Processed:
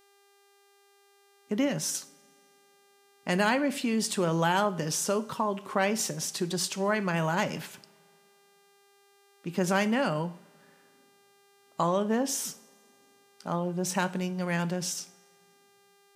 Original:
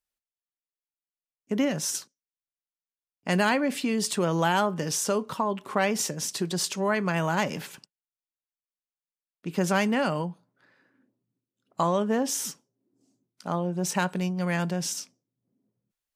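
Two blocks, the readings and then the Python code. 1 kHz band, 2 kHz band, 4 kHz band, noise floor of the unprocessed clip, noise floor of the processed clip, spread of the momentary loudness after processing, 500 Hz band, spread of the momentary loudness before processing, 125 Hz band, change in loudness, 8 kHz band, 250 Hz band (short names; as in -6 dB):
-2.0 dB, -1.5 dB, -1.5 dB, under -85 dBFS, -63 dBFS, 11 LU, -1.5 dB, 10 LU, -2.0 dB, -2.0 dB, -2.0 dB, -2.0 dB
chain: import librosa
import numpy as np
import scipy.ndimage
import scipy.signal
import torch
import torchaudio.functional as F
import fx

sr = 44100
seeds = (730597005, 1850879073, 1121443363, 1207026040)

y = fx.rev_double_slope(x, sr, seeds[0], early_s=0.49, late_s=2.6, knee_db=-21, drr_db=13.0)
y = fx.dmg_buzz(y, sr, base_hz=400.0, harmonics=37, level_db=-61.0, tilt_db=-4, odd_only=False)
y = y * librosa.db_to_amplitude(-2.0)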